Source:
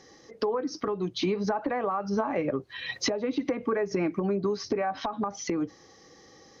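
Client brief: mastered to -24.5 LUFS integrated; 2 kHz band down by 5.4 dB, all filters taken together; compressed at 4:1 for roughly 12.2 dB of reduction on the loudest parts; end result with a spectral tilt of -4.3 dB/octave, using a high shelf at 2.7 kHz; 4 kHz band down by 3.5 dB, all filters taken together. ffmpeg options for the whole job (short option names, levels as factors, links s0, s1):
-af "equalizer=f=2000:t=o:g=-6.5,highshelf=f=2700:g=4,equalizer=f=4000:t=o:g=-7,acompressor=threshold=0.0112:ratio=4,volume=6.68"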